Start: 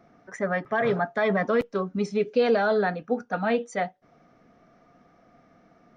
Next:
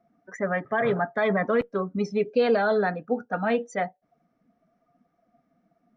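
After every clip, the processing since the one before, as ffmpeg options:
-af "afftdn=nr=16:nf=-44"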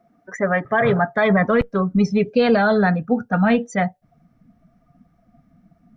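-af "asubboost=boost=11:cutoff=130,volume=2.37"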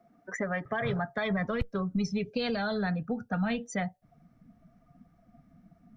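-filter_complex "[0:a]acrossover=split=120|3000[s0][s1][s2];[s1]acompressor=threshold=0.0447:ratio=6[s3];[s0][s3][s2]amix=inputs=3:normalize=0,volume=0.668"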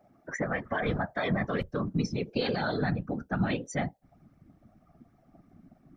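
-af "afftfilt=real='hypot(re,im)*cos(2*PI*random(0))':imag='hypot(re,im)*sin(2*PI*random(1))':win_size=512:overlap=0.75,volume=2.11"

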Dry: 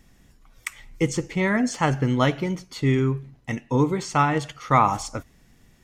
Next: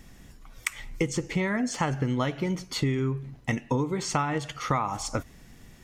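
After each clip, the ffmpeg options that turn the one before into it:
-af "acompressor=threshold=0.0355:ratio=10,volume=1.88"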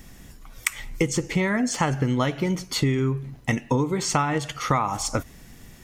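-af "highshelf=f=9300:g=7.5,volume=1.58"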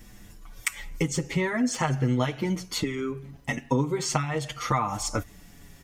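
-filter_complex "[0:a]asplit=2[s0][s1];[s1]adelay=6.2,afreqshift=-0.42[s2];[s0][s2]amix=inputs=2:normalize=1"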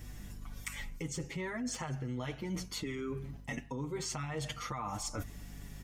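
-af "alimiter=limit=0.112:level=0:latency=1:release=43,aeval=exprs='val(0)+0.00562*(sin(2*PI*50*n/s)+sin(2*PI*2*50*n/s)/2+sin(2*PI*3*50*n/s)/3+sin(2*PI*4*50*n/s)/4+sin(2*PI*5*50*n/s)/5)':c=same,areverse,acompressor=threshold=0.02:ratio=6,areverse,volume=0.841"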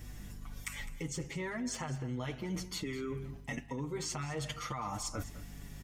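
-af "aecho=1:1:207:0.168"

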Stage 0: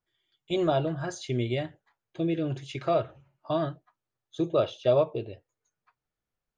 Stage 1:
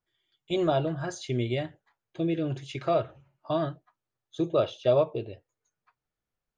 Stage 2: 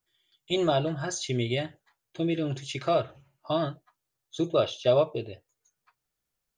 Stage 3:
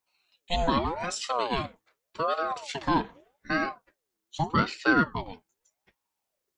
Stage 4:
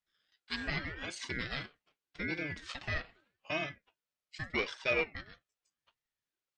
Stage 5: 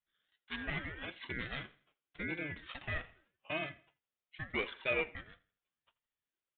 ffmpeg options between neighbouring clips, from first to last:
-af anull
-af "highshelf=f=3300:g=11"
-af "aeval=exprs='val(0)*sin(2*PI*640*n/s+640*0.5/0.83*sin(2*PI*0.83*n/s))':c=same,volume=1.33"
-af "bandpass=f=2200:t=q:w=0.71:csg=0,aeval=exprs='val(0)*sin(2*PI*940*n/s)':c=same,volume=0.841"
-af "aecho=1:1:82|164|246:0.0841|0.0311|0.0115,aresample=8000,aresample=44100,volume=0.75"

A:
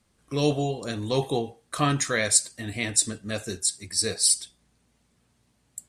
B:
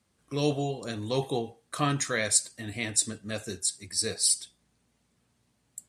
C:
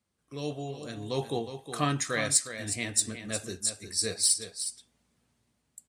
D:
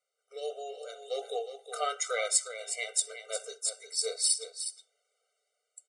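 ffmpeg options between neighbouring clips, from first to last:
-af "highpass=62,volume=0.668"
-filter_complex "[0:a]dynaudnorm=f=440:g=5:m=3.16,aeval=exprs='0.891*(cos(1*acos(clip(val(0)/0.891,-1,1)))-cos(1*PI/2))+0.0794*(cos(3*acos(clip(val(0)/0.891,-1,1)))-cos(3*PI/2))':c=same,asplit=2[s0][s1];[s1]aecho=0:1:362:0.316[s2];[s0][s2]amix=inputs=2:normalize=0,volume=0.501"
-af "aresample=22050,aresample=44100,afftfilt=real='re*eq(mod(floor(b*sr/1024/390),2),1)':imag='im*eq(mod(floor(b*sr/1024/390),2),1)':win_size=1024:overlap=0.75,volume=1.12"

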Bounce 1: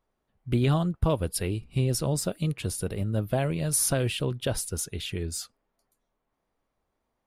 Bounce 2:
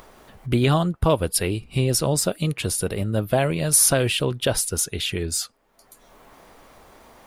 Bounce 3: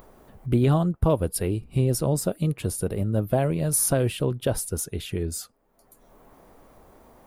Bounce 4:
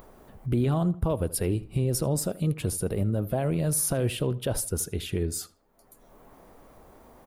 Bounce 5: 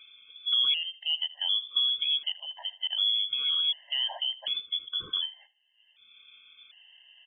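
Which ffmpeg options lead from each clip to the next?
-filter_complex "[0:a]lowshelf=f=290:g=-7,asplit=2[s0][s1];[s1]acompressor=mode=upward:threshold=0.0316:ratio=2.5,volume=1.19[s2];[s0][s2]amix=inputs=2:normalize=0,volume=1.26"
-af "equalizer=f=3600:w=0.33:g=-12.5"
-filter_complex "[0:a]alimiter=limit=0.141:level=0:latency=1:release=37,asplit=2[s0][s1];[s1]adelay=79,lowpass=f=3400:p=1,volume=0.126,asplit=2[s2][s3];[s3]adelay=79,lowpass=f=3400:p=1,volume=0.33,asplit=2[s4][s5];[s5]adelay=79,lowpass=f=3400:p=1,volume=0.33[s6];[s0][s2][s4][s6]amix=inputs=4:normalize=0"
-af "lowpass=f=3000:t=q:w=0.5098,lowpass=f=3000:t=q:w=0.6013,lowpass=f=3000:t=q:w=0.9,lowpass=f=3000:t=q:w=2.563,afreqshift=-3500,afftfilt=real='re*gt(sin(2*PI*0.67*pts/sr)*(1-2*mod(floor(b*sr/1024/530),2)),0)':imag='im*gt(sin(2*PI*0.67*pts/sr)*(1-2*mod(floor(b*sr/1024/530),2)),0)':win_size=1024:overlap=0.75"

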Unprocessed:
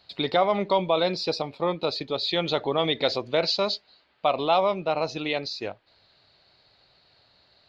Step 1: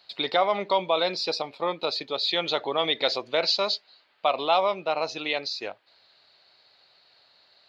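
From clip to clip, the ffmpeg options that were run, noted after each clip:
-af "highpass=f=660:p=1,volume=1.26"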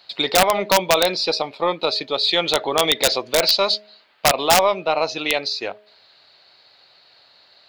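-af "bandreject=f=209.8:t=h:w=4,bandreject=f=419.6:t=h:w=4,bandreject=f=629.4:t=h:w=4,aeval=exprs='0.376*(cos(1*acos(clip(val(0)/0.376,-1,1)))-cos(1*PI/2))+0.00422*(cos(6*acos(clip(val(0)/0.376,-1,1)))-cos(6*PI/2))':c=same,aeval=exprs='(mod(4.22*val(0)+1,2)-1)/4.22':c=same,volume=2.24"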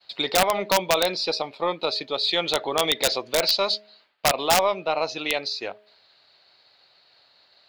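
-af "agate=range=0.0224:threshold=0.00282:ratio=3:detection=peak,volume=0.596"

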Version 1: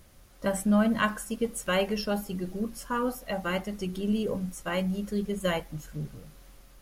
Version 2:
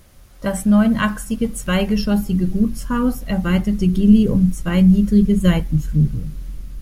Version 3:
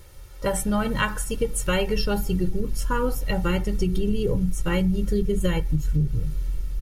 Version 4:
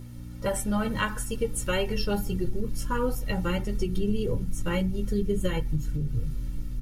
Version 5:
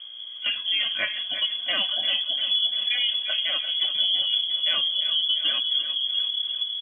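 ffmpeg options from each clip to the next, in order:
-af "asubboost=boost=8.5:cutoff=220,volume=2"
-af "aecho=1:1:2.2:0.76,acompressor=threshold=0.141:ratio=6,volume=0.891"
-af "aeval=exprs='val(0)+0.0224*(sin(2*PI*60*n/s)+sin(2*PI*2*60*n/s)/2+sin(2*PI*3*60*n/s)/3+sin(2*PI*4*60*n/s)/4+sin(2*PI*5*60*n/s)/5)':c=same,flanger=delay=8:depth=1.7:regen=-36:speed=1.6:shape=sinusoidal"
-filter_complex "[0:a]asplit=2[s0][s1];[s1]aecho=0:1:346|692|1038|1384|1730|2076|2422:0.282|0.166|0.0981|0.0579|0.0342|0.0201|0.0119[s2];[s0][s2]amix=inputs=2:normalize=0,lowpass=f=2900:t=q:w=0.5098,lowpass=f=2900:t=q:w=0.6013,lowpass=f=2900:t=q:w=0.9,lowpass=f=2900:t=q:w=2.563,afreqshift=-3400,volume=1.12"

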